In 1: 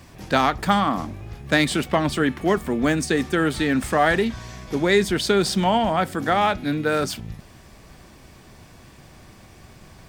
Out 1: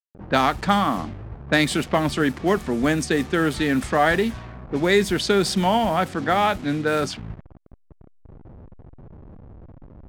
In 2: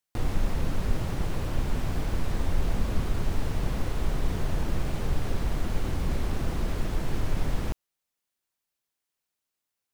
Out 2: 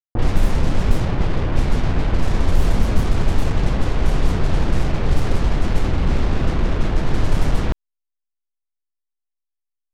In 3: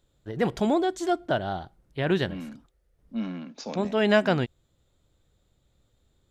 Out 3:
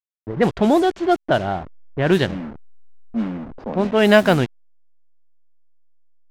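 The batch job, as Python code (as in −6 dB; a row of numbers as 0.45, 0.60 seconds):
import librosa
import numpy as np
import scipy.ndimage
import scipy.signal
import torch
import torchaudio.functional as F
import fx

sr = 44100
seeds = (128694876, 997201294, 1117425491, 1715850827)

y = fx.delta_hold(x, sr, step_db=-36.5)
y = fx.env_lowpass(y, sr, base_hz=720.0, full_db=-17.5)
y = y * 10.0 ** (-2 / 20.0) / np.max(np.abs(y))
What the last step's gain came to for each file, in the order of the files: 0.0, +10.0, +8.0 decibels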